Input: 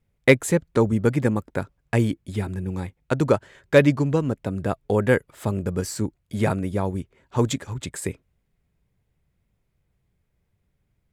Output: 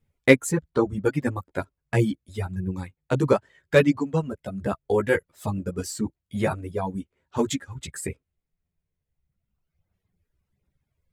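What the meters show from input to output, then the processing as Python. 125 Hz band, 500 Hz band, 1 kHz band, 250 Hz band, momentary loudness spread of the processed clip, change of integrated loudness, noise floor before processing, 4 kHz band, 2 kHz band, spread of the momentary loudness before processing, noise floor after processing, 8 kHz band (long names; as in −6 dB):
−4.0 dB, −1.5 dB, −1.5 dB, −2.0 dB, 14 LU, −2.0 dB, −73 dBFS, −1.0 dB, −1.0 dB, 12 LU, −84 dBFS, −1.0 dB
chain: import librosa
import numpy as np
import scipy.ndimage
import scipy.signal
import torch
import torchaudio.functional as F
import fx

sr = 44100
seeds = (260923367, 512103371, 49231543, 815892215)

y = fx.chorus_voices(x, sr, voices=2, hz=0.75, base_ms=13, depth_ms=2.1, mix_pct=45)
y = fx.dereverb_blind(y, sr, rt60_s=2.0)
y = y * librosa.db_to_amplitude(2.0)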